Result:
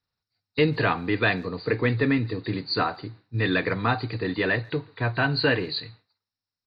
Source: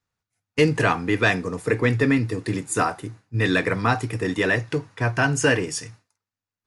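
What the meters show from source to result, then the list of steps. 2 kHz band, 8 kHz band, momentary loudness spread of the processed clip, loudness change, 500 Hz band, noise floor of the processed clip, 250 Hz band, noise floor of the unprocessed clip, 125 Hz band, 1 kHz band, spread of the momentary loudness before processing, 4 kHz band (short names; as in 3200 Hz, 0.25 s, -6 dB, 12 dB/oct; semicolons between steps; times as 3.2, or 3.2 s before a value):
-3.0 dB, under -40 dB, 9 LU, -3.0 dB, -3.0 dB, under -85 dBFS, -3.0 dB, under -85 dBFS, -3.0 dB, -3.0 dB, 9 LU, +1.5 dB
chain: nonlinear frequency compression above 3600 Hz 4:1; speakerphone echo 0.14 s, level -27 dB; gain -3 dB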